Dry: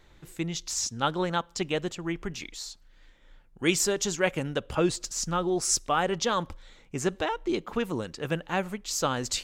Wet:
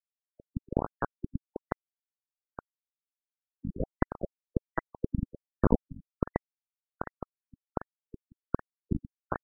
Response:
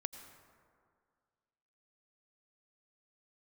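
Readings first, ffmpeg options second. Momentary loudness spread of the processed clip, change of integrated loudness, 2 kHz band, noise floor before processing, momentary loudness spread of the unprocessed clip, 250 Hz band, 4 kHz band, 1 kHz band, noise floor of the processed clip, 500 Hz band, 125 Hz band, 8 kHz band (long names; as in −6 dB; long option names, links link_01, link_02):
20 LU, −7.0 dB, −12.5 dB, −57 dBFS, 10 LU, −4.0 dB, below −40 dB, −9.0 dB, below −85 dBFS, −8.5 dB, −1.0 dB, below −40 dB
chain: -filter_complex "[0:a]bass=frequency=250:gain=-6,treble=frequency=4000:gain=8,asplit=2[link_01][link_02];[1:a]atrim=start_sample=2205[link_03];[link_02][link_03]afir=irnorm=-1:irlink=0,volume=0dB[link_04];[link_01][link_04]amix=inputs=2:normalize=0,acompressor=mode=upward:threshold=-32dB:ratio=2.5,acrusher=samples=36:mix=1:aa=0.000001:lfo=1:lforange=57.6:lforate=1.8,acompressor=threshold=-36dB:ratio=3,aecho=1:1:220|440|660|880:0.188|0.0885|0.0416|0.0196,aresample=11025,aresample=44100,lowshelf=frequency=260:gain=4,acrusher=bits=3:mix=0:aa=0.000001,afftfilt=real='re*lt(b*sr/1024,270*pow(2000/270,0.5+0.5*sin(2*PI*1.3*pts/sr)))':imag='im*lt(b*sr/1024,270*pow(2000/270,0.5+0.5*sin(2*PI*1.3*pts/sr)))':win_size=1024:overlap=0.75,volume=6.5dB"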